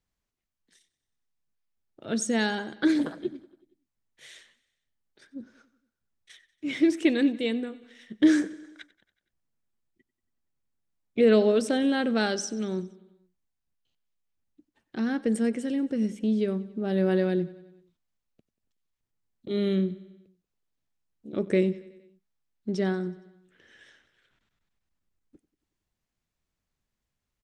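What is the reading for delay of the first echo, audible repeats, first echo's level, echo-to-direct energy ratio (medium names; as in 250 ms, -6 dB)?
93 ms, 4, -20.0 dB, -18.0 dB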